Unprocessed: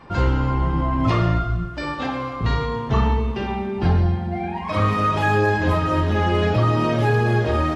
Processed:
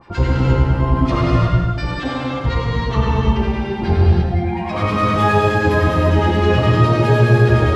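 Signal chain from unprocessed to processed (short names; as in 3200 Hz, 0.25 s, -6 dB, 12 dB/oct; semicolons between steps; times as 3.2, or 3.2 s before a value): harmonic tremolo 9.7 Hz, depth 100%, crossover 1100 Hz; non-linear reverb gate 0.38 s flat, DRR -4.5 dB; gain +3 dB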